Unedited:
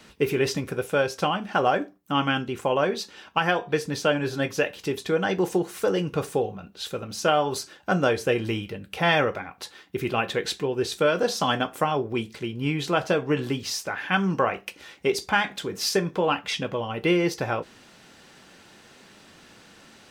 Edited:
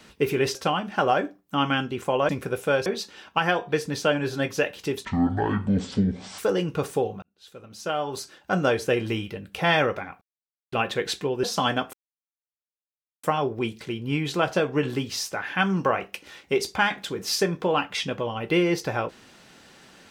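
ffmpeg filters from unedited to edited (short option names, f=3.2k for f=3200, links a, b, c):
-filter_complex "[0:a]asplit=11[a][b][c][d][e][f][g][h][i][j][k];[a]atrim=end=0.552[l];[b]atrim=start=1.118:end=2.862[m];[c]atrim=start=0.548:end=1.122[n];[d]atrim=start=2.858:end=5.054[o];[e]atrim=start=5.05:end=5.77,asetpts=PTS-STARTPTS,asetrate=23814,aresample=44100[p];[f]atrim=start=5.766:end=6.61,asetpts=PTS-STARTPTS,afade=t=out:st=0.84:d=0.004:c=hsin[q];[g]atrim=start=6.61:end=9.6,asetpts=PTS-STARTPTS,afade=t=in:d=1.47,afade=t=out:st=2.986:d=0.004:c=hsin[r];[h]atrim=start=9.6:end=10.11,asetpts=PTS-STARTPTS,volume=0[s];[i]atrim=start=10.11:end=10.822,asetpts=PTS-STARTPTS,afade=t=in:d=0.004:c=hsin[t];[j]atrim=start=11.268:end=11.77,asetpts=PTS-STARTPTS,afade=t=out:st=0.498:d=0.004:c=hsin,apad=pad_dur=1.3[u];[k]atrim=start=11.77,asetpts=PTS-STARTPTS,afade=t=in:d=0.004:c=hsin[v];[l][m]acrossfade=d=0.004:c1=hsin:c2=hsin[w];[w][n]acrossfade=d=0.004:c1=hsin:c2=hsin[x];[x][o]acrossfade=d=0.004:c1=hsin:c2=hsin[y];[y][p]acrossfade=d=0.004:c1=hsin:c2=hsin[z];[q][r][s][t]concat=n=4:v=0:a=1[aa];[z][aa]acrossfade=d=0.004:c1=hsin:c2=hsin[ab];[u][v]concat=n=2:v=0:a=1[ac];[ab][ac]acrossfade=d=0.004:c1=hsin:c2=hsin"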